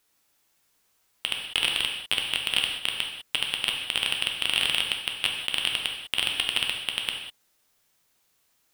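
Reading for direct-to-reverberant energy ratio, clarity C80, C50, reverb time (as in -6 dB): 1.0 dB, 6.5 dB, 4.0 dB, no single decay rate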